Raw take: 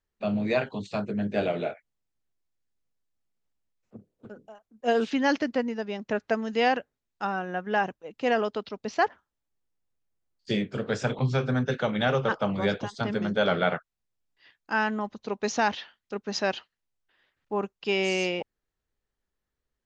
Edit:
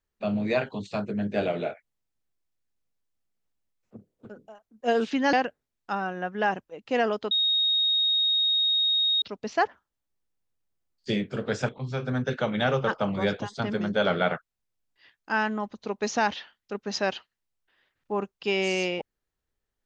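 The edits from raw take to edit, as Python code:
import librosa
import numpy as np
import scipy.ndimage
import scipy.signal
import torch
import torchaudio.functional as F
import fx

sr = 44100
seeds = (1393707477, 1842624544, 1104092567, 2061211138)

y = fx.edit(x, sr, fx.cut(start_s=5.33, length_s=1.32),
    fx.insert_tone(at_s=8.63, length_s=1.91, hz=3740.0, db=-20.5),
    fx.fade_in_from(start_s=11.1, length_s=0.85, curve='qsin', floor_db=-15.5), tone=tone)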